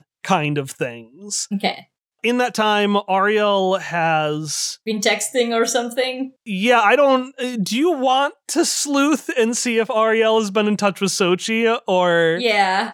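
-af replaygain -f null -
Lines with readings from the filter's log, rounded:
track_gain = -0.9 dB
track_peak = 0.606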